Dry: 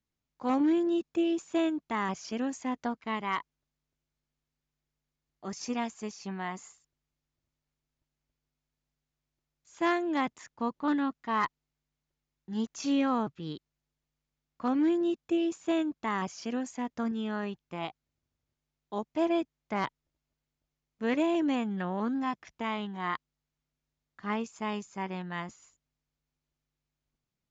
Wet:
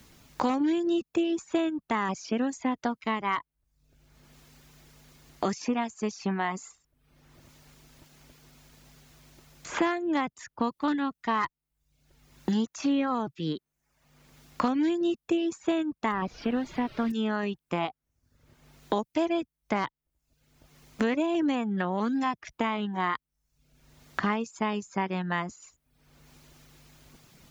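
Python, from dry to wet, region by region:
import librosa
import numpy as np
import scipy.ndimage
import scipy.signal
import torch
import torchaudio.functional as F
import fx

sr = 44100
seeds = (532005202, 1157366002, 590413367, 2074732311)

y = fx.dmg_noise_colour(x, sr, seeds[0], colour='pink', level_db=-49.0, at=(16.11, 17.1), fade=0.02)
y = fx.air_absorb(y, sr, metres=320.0, at=(16.11, 17.1), fade=0.02)
y = fx.dereverb_blind(y, sr, rt60_s=0.51)
y = fx.band_squash(y, sr, depth_pct=100)
y = F.gain(torch.from_numpy(y), 3.5).numpy()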